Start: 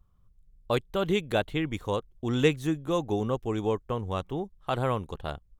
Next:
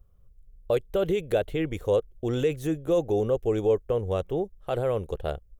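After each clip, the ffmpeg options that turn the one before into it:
-af "alimiter=limit=-20dB:level=0:latency=1:release=24,equalizer=f=125:t=o:w=1:g=-4,equalizer=f=250:t=o:w=1:g=-9,equalizer=f=500:t=o:w=1:g=8,equalizer=f=1k:t=o:w=1:g=-12,equalizer=f=2k:t=o:w=1:g=-3,equalizer=f=4k:t=o:w=1:g=-8,equalizer=f=8k:t=o:w=1:g=-4,volume=6.5dB"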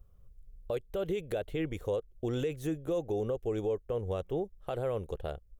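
-af "alimiter=limit=-24dB:level=0:latency=1:release=488"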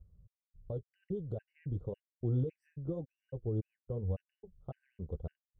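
-af "bandpass=f=110:t=q:w=1.2:csg=0,flanger=delay=3.9:depth=5.1:regen=-47:speed=0.97:shape=sinusoidal,afftfilt=real='re*gt(sin(2*PI*1.8*pts/sr)*(1-2*mod(floor(b*sr/1024/1500),2)),0)':imag='im*gt(sin(2*PI*1.8*pts/sr)*(1-2*mod(floor(b*sr/1024/1500),2)),0)':win_size=1024:overlap=0.75,volume=10dB"

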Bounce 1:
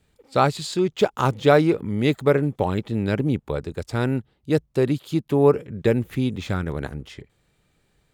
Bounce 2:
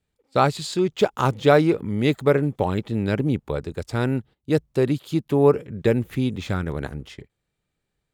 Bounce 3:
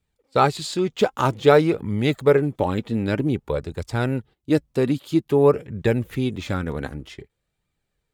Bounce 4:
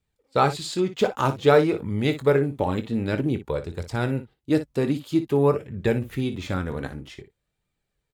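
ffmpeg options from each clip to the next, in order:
-af "agate=range=-13dB:threshold=-42dB:ratio=16:detection=peak"
-af "flanger=delay=0.8:depth=3.5:regen=57:speed=0.52:shape=triangular,volume=5dB"
-af "aecho=1:1:22|58:0.251|0.237,volume=-2.5dB"

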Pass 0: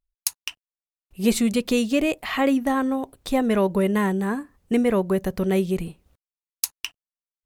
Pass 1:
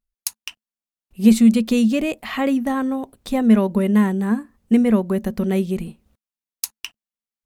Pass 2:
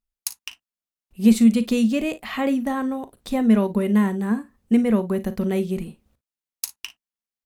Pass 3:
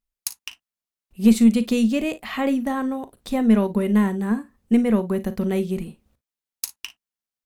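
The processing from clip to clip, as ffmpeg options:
-af "equalizer=f=220:t=o:w=0.21:g=14.5,volume=-1dB"
-af "aecho=1:1:39|55:0.178|0.126,volume=-2.5dB"
-af "aeval=exprs='0.631*(cos(1*acos(clip(val(0)/0.631,-1,1)))-cos(1*PI/2))+0.0158*(cos(4*acos(clip(val(0)/0.631,-1,1)))-cos(4*PI/2))':c=same"

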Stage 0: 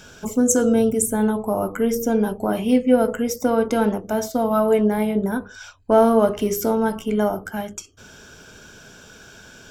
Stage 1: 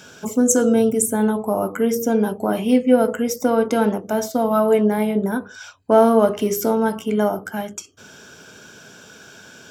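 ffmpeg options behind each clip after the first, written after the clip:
-af "highpass=130,volume=1.5dB"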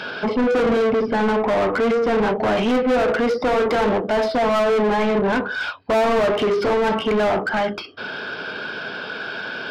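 -filter_complex "[0:a]aresample=11025,aresample=44100,asplit=2[a][b];[b]highpass=f=720:p=1,volume=35dB,asoftclip=type=tanh:threshold=-2dB[c];[a][c]amix=inputs=2:normalize=0,lowpass=f=1.9k:p=1,volume=-6dB,volume=-9dB"

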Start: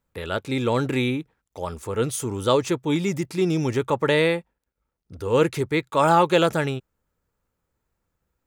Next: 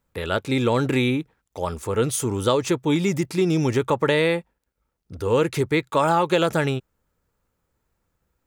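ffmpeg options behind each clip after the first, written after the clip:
-af "acompressor=threshold=-19dB:ratio=6,volume=3.5dB"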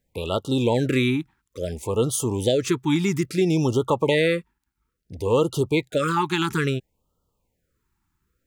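-af "afftfilt=real='re*(1-between(b*sr/1024,530*pow(2000/530,0.5+0.5*sin(2*PI*0.59*pts/sr))/1.41,530*pow(2000/530,0.5+0.5*sin(2*PI*0.59*pts/sr))*1.41))':imag='im*(1-between(b*sr/1024,530*pow(2000/530,0.5+0.5*sin(2*PI*0.59*pts/sr))/1.41,530*pow(2000/530,0.5+0.5*sin(2*PI*0.59*pts/sr))*1.41))':win_size=1024:overlap=0.75"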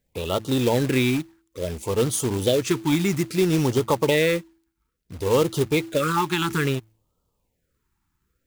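-af "bandreject=f=109.8:t=h:w=4,bandreject=f=219.6:t=h:w=4,bandreject=f=329.4:t=h:w=4,acrusher=bits=3:mode=log:mix=0:aa=0.000001"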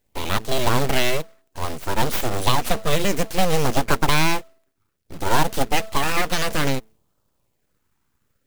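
-af "aeval=exprs='abs(val(0))':c=same,volume=4.5dB"

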